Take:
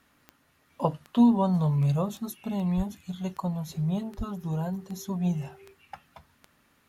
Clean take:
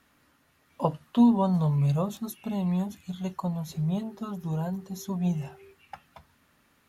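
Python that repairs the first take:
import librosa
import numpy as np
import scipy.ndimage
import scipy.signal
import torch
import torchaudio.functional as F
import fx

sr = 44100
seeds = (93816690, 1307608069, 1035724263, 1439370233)

y = fx.fix_declick_ar(x, sr, threshold=10.0)
y = fx.highpass(y, sr, hz=140.0, slope=24, at=(2.76, 2.88), fade=0.02)
y = fx.highpass(y, sr, hz=140.0, slope=24, at=(4.17, 4.29), fade=0.02)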